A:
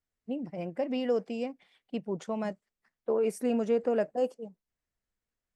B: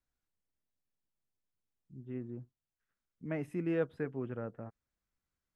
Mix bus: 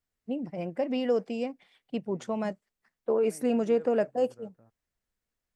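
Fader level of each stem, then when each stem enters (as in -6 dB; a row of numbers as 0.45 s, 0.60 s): +2.0 dB, -16.0 dB; 0.00 s, 0.00 s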